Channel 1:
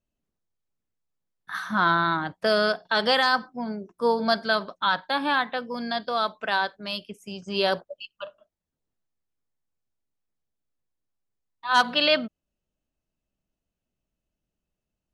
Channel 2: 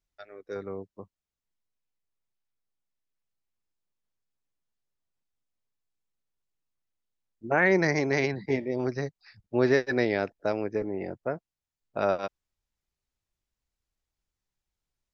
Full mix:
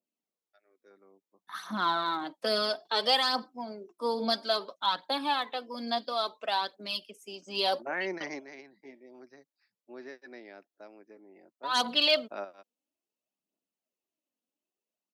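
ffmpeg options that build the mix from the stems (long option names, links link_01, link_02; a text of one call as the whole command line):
ffmpeg -i stem1.wav -i stem2.wav -filter_complex "[0:a]equalizer=frequency=1600:width_type=o:width=0.49:gain=-9,aphaser=in_gain=1:out_gain=1:delay=4.3:decay=0.5:speed=0.59:type=triangular,adynamicequalizer=threshold=0.0158:dfrequency=3100:dqfactor=0.7:tfrequency=3100:tqfactor=0.7:attack=5:release=100:ratio=0.375:range=2.5:mode=boostabove:tftype=highshelf,volume=-5.5dB,asplit=2[link_01][link_02];[1:a]equalizer=frequency=460:width=4.2:gain=-7,adelay=350,volume=-10dB[link_03];[link_02]apad=whole_len=682947[link_04];[link_03][link_04]sidechaingate=range=-10dB:threshold=-57dB:ratio=16:detection=peak[link_05];[link_01][link_05]amix=inputs=2:normalize=0,highpass=frequency=240:width=0.5412,highpass=frequency=240:width=1.3066" out.wav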